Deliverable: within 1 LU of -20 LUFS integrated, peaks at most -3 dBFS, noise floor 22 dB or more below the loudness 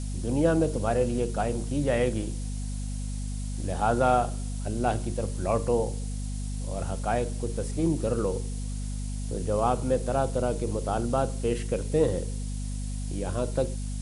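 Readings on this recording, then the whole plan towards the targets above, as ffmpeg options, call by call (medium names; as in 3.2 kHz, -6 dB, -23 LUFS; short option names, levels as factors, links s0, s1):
hum 50 Hz; highest harmonic 250 Hz; hum level -30 dBFS; noise floor -32 dBFS; noise floor target -51 dBFS; loudness -28.5 LUFS; peak level -10.0 dBFS; loudness target -20.0 LUFS
-> -af "bandreject=f=50:t=h:w=6,bandreject=f=100:t=h:w=6,bandreject=f=150:t=h:w=6,bandreject=f=200:t=h:w=6,bandreject=f=250:t=h:w=6"
-af "afftdn=nr=19:nf=-32"
-af "volume=2.66,alimiter=limit=0.708:level=0:latency=1"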